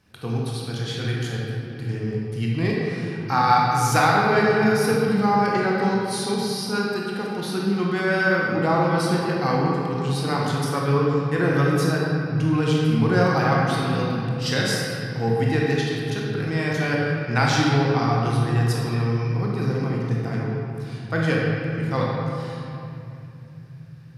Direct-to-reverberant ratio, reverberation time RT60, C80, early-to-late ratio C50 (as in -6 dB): -4.0 dB, 2.8 s, 0.0 dB, -1.5 dB